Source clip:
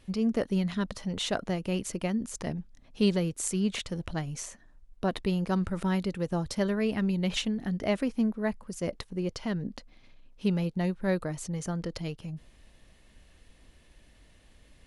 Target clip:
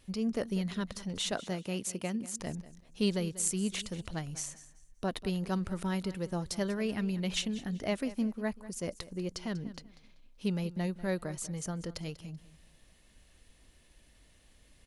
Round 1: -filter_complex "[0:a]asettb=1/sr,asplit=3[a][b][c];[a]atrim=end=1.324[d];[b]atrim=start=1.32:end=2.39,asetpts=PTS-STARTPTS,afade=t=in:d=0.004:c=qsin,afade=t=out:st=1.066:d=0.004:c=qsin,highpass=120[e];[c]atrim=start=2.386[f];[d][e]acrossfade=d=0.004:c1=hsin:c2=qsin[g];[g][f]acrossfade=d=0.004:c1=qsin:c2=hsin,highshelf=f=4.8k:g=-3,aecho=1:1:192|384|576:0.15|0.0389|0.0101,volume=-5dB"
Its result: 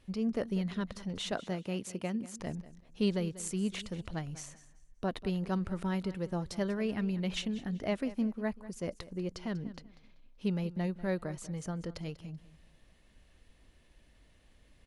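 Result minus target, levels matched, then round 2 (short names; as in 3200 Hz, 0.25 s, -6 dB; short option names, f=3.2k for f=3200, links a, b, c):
8000 Hz band -7.5 dB
-filter_complex "[0:a]asettb=1/sr,asplit=3[a][b][c];[a]atrim=end=1.324[d];[b]atrim=start=1.32:end=2.39,asetpts=PTS-STARTPTS,afade=t=in:d=0.004:c=qsin,afade=t=out:st=1.066:d=0.004:c=qsin,highpass=120[e];[c]atrim=start=2.386[f];[d][e]acrossfade=d=0.004:c1=hsin:c2=qsin[g];[g][f]acrossfade=d=0.004:c1=qsin:c2=hsin,highshelf=f=4.8k:g=8.5,aecho=1:1:192|384|576:0.15|0.0389|0.0101,volume=-5dB"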